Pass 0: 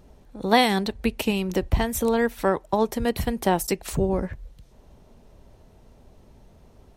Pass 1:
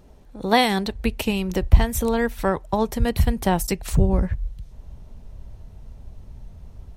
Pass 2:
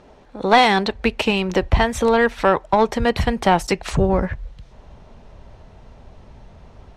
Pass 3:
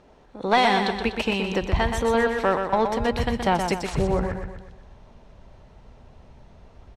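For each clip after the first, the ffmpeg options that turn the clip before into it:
-af "asubboost=boost=4.5:cutoff=150,volume=1.12"
-filter_complex "[0:a]asplit=2[s0][s1];[s1]highpass=f=720:p=1,volume=7.94,asoftclip=type=tanh:threshold=0.891[s2];[s0][s2]amix=inputs=2:normalize=0,lowpass=f=2200:p=1,volume=0.501,lowpass=7500"
-af "aecho=1:1:123|246|369|492|615|738:0.501|0.241|0.115|0.0554|0.0266|0.0128,volume=0.501"

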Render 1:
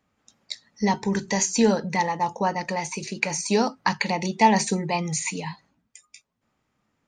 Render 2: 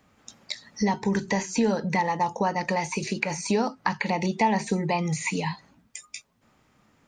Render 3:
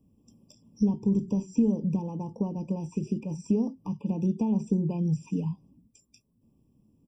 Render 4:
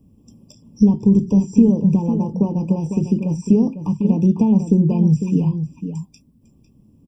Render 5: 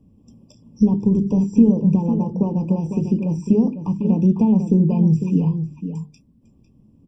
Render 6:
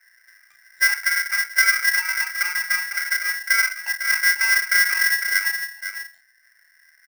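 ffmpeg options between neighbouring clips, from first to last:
-filter_complex "[0:a]acrossover=split=2800[s0][s1];[s1]acompressor=threshold=0.0126:ratio=4:attack=1:release=60[s2];[s0][s2]amix=inputs=2:normalize=0,asplit=2[s3][s4];[s4]alimiter=limit=0.168:level=0:latency=1:release=271,volume=1.12[s5];[s3][s5]amix=inputs=2:normalize=0,acompressor=threshold=0.02:ratio=2,volume=1.58"
-af "firequalizer=gain_entry='entry(260,0);entry(720,-21);entry(3000,-24);entry(9500,-5)':delay=0.05:min_phase=1,afftfilt=real='re*eq(mod(floor(b*sr/1024/1200),2),0)':imag='im*eq(mod(floor(b*sr/1024/1200),2),0)':win_size=1024:overlap=0.75,volume=1.19"
-filter_complex "[0:a]lowshelf=f=230:g=5,asplit=2[s0][s1];[s1]adelay=501.5,volume=0.355,highshelf=f=4000:g=-11.3[s2];[s0][s2]amix=inputs=2:normalize=0,volume=2.66"
-af "lowpass=f=3200:p=1,bandreject=f=50:t=h:w=6,bandreject=f=100:t=h:w=6,bandreject=f=150:t=h:w=6,bandreject=f=200:t=h:w=6,bandreject=f=250:t=h:w=6,bandreject=f=300:t=h:w=6,bandreject=f=350:t=h:w=6,bandreject=f=400:t=h:w=6,bandreject=f=450:t=h:w=6"
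-filter_complex "[0:a]lowpass=f=1500:p=1,asplit=2[s0][s1];[s1]adelay=33,volume=0.473[s2];[s0][s2]amix=inputs=2:normalize=0,aeval=exprs='val(0)*sgn(sin(2*PI*1800*n/s))':c=same,volume=0.596"

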